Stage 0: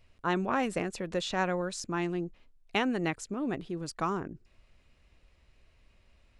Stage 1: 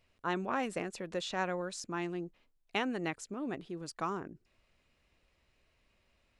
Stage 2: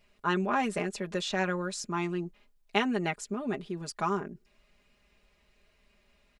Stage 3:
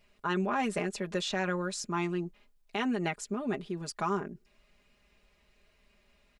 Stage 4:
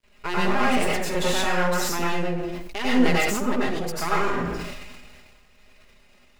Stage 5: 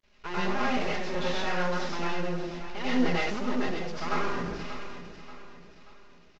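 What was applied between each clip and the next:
bass shelf 110 Hz -10.5 dB; trim -4 dB
comb 4.9 ms, depth 78%; trim +3.5 dB
peak limiter -21 dBFS, peak gain reduction 9.5 dB
half-wave rectifier; plate-style reverb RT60 0.52 s, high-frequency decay 0.9×, pre-delay 80 ms, DRR -5.5 dB; decay stretcher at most 29 dB/s; trim +6.5 dB
CVSD coder 32 kbps; on a send: feedback delay 583 ms, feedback 43%, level -12 dB; on the sum: trim -6 dB

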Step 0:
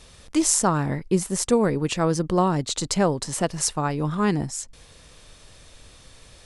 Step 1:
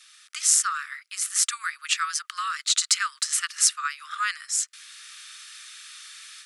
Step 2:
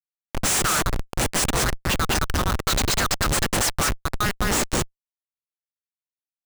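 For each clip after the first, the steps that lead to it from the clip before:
level rider gain up to 9 dB; steep high-pass 1.2 kHz 96 dB/octave
delay 201 ms -3.5 dB; Schmitt trigger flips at -23.5 dBFS; trim +6 dB

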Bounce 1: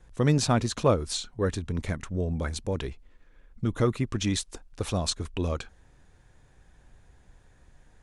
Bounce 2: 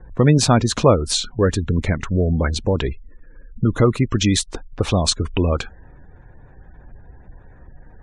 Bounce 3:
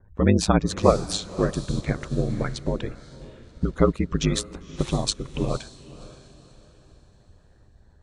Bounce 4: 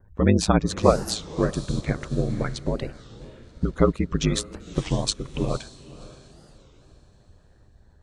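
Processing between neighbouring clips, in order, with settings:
spectral gate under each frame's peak -30 dB strong; level-controlled noise filter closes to 1.6 kHz, open at -23 dBFS; in parallel at +2 dB: compression, threshold -32 dBFS, peak gain reduction 15 dB; on the sum: trim +6.5 dB
ring modulator 53 Hz; echo that smears into a reverb 537 ms, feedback 41%, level -11 dB; upward expansion 1.5:1, over -33 dBFS
warped record 33 1/3 rpm, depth 250 cents

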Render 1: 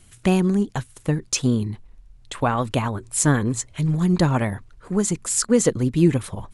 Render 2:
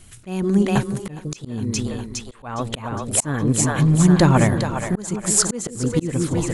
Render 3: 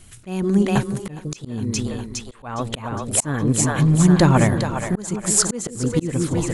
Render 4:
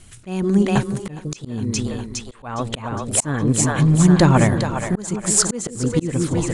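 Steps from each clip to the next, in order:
two-band feedback delay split 470 Hz, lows 165 ms, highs 411 ms, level -7 dB; slow attack 418 ms; trim +5 dB
no audible change
resampled via 22.05 kHz; trim +1 dB

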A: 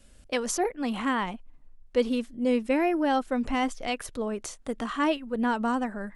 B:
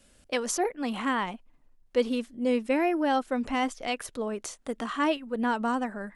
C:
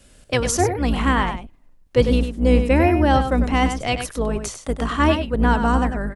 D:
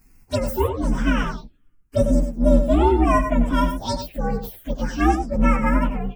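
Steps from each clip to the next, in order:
bass shelf 110 Hz -10.5 dB
octave divider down 2 oct, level +3 dB; delay 99 ms -8.5 dB; trim +7.5 dB
frequency axis rescaled in octaves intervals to 123%; touch-sensitive phaser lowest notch 590 Hz, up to 4.4 kHz, full sweep at -18.5 dBFS; trim +1.5 dB

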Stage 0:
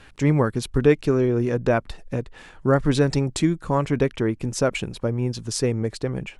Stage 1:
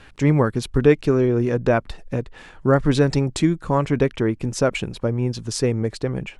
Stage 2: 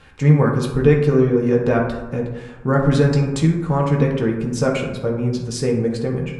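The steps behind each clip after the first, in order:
treble shelf 8 kHz -5.5 dB; trim +2 dB
reverberation RT60 1.1 s, pre-delay 3 ms, DRR -1.5 dB; trim -3 dB

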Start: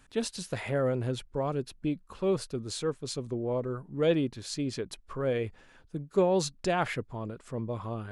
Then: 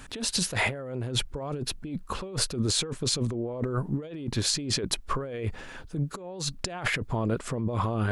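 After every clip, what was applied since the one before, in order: compressor with a negative ratio -39 dBFS, ratio -1; trim +8 dB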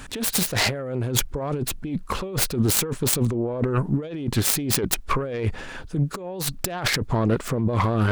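self-modulated delay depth 0.34 ms; trim +6.5 dB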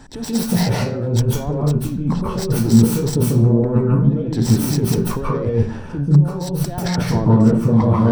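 reverberation RT60 0.45 s, pre-delay 135 ms, DRR -3.5 dB; trim -11 dB

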